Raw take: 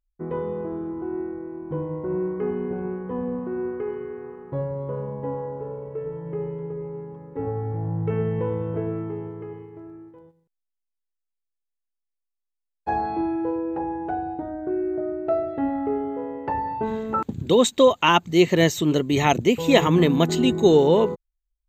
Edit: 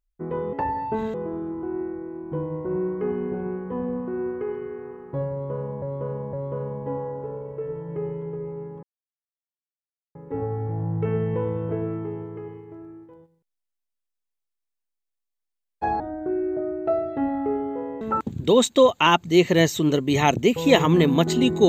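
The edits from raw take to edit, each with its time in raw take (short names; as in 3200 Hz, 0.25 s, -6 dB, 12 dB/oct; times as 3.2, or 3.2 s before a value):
4.7–5.21 loop, 3 plays
7.2 insert silence 1.32 s
13.05–14.41 cut
16.42–17.03 move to 0.53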